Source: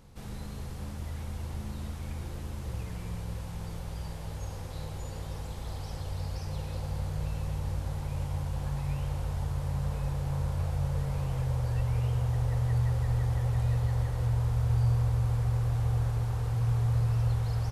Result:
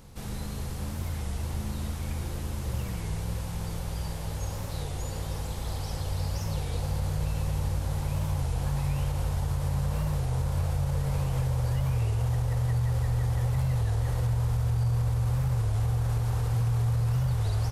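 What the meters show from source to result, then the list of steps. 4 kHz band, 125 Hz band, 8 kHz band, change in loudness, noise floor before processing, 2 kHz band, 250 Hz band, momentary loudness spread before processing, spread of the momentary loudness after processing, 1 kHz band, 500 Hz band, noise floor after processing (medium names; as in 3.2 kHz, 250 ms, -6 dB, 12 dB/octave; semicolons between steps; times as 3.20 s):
+5.5 dB, +2.0 dB, +7.5 dB, +2.0 dB, -39 dBFS, +3.5 dB, +3.5 dB, 12 LU, 8 LU, +3.0 dB, +3.0 dB, -34 dBFS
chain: peak limiter -24.5 dBFS, peak gain reduction 7.5 dB; treble shelf 5.5 kHz +5.5 dB; warped record 33 1/3 rpm, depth 160 cents; trim +4.5 dB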